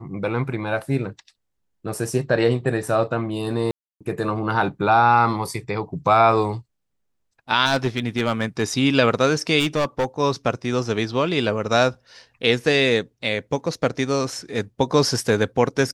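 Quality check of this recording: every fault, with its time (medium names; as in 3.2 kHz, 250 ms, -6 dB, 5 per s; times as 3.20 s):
3.71–4.01 s: dropout 296 ms
7.65–8.63 s: clipped -13.5 dBFS
9.59–10.05 s: clipped -16.5 dBFS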